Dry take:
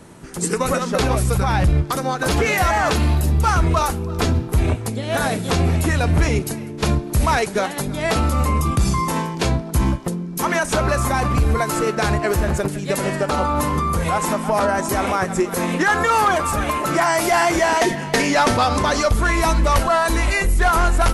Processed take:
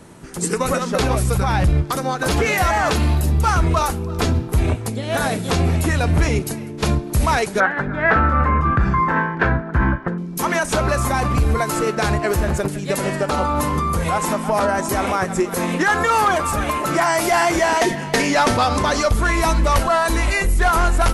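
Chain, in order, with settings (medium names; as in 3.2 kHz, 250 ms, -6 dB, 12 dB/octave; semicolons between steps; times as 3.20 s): 7.60–10.18 s: resonant low-pass 1.6 kHz, resonance Q 6.4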